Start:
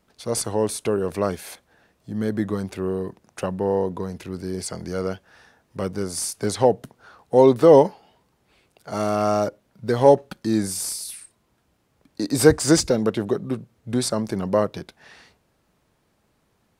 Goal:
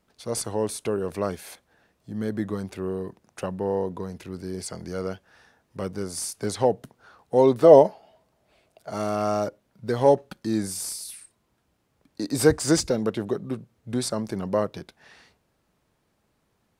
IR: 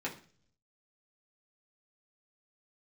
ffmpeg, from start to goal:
-filter_complex "[0:a]asettb=1/sr,asplit=3[link_01][link_02][link_03];[link_01]atrim=end=7.644[link_04];[link_02]atrim=start=7.64:end=8.9,asetpts=PTS-STARTPTS,afade=type=in:duration=0.004:curve=qsin,afade=type=out:start_time=1.256:duration=0.004:curve=qsin,equalizer=frequency=640:width_type=o:width=0.31:gain=13.5[link_05];[link_03]atrim=start=8.896[link_06];[link_04][link_05]acrossfade=duration=0.004:curve1=hsin:curve2=qsin[link_07];[link_07][link_06]acrossfade=duration=0.004:curve1=qsin:curve2=hsin,volume=-4dB"

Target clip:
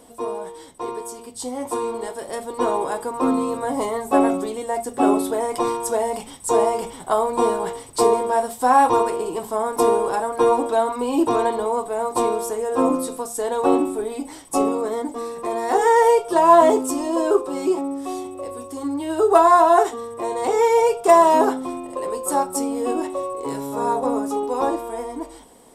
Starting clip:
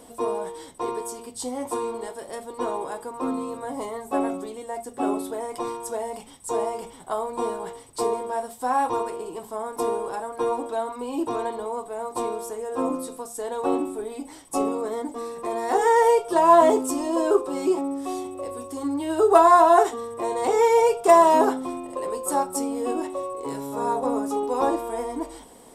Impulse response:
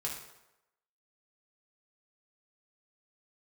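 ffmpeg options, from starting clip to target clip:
-af "dynaudnorm=framelen=380:gausssize=11:maxgain=10dB,volume=-1dB"

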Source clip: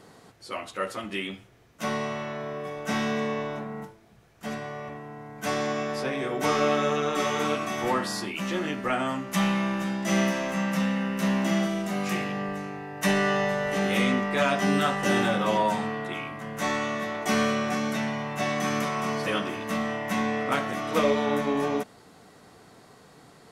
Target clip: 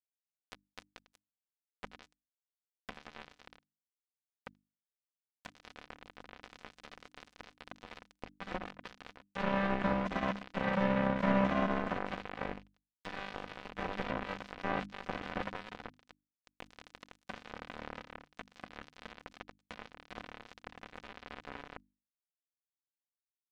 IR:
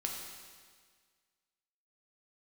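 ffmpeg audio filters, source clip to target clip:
-filter_complex "[0:a]asubboost=boost=9:cutoff=87,asplit=2[link_01][link_02];[link_02]aecho=0:1:71:0.224[link_03];[link_01][link_03]amix=inputs=2:normalize=0,alimiter=limit=-21.5dB:level=0:latency=1:release=113,asplit=2[link_04][link_05];[link_05]acompressor=threshold=-38dB:ratio=8,volume=2dB[link_06];[link_04][link_06]amix=inputs=2:normalize=0,lowpass=1500,equalizer=frequency=200:width=3.7:gain=5.5,acrusher=bits=2:mix=0:aa=0.5,acompressor=mode=upward:threshold=-42dB:ratio=2.5,bandreject=frequency=50:width_type=h:width=6,bandreject=frequency=100:width_type=h:width=6,bandreject=frequency=150:width_type=h:width=6,bandreject=frequency=200:width_type=h:width=6,bandreject=frequency=250:width_type=h:width=6,bandreject=frequency=300:width_type=h:width=6,aecho=1:1:4:0.33"

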